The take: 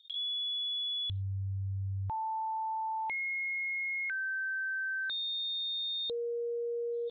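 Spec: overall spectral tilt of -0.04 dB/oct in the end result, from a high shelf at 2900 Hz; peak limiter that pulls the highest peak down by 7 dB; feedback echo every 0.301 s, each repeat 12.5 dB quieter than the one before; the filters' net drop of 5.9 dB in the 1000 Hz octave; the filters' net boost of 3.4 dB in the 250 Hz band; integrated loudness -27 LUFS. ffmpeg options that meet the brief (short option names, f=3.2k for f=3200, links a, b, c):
-af "equalizer=f=250:t=o:g=7,equalizer=f=1k:t=o:g=-7.5,highshelf=f=2.9k:g=4.5,alimiter=level_in=10dB:limit=-24dB:level=0:latency=1,volume=-10dB,aecho=1:1:301|602|903:0.237|0.0569|0.0137,volume=9dB"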